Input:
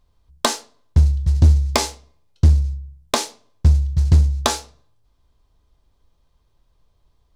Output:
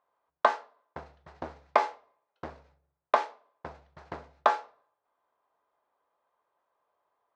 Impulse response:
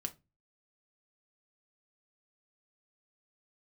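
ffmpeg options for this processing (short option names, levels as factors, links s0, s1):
-af "asuperpass=centerf=990:order=4:qfactor=0.85"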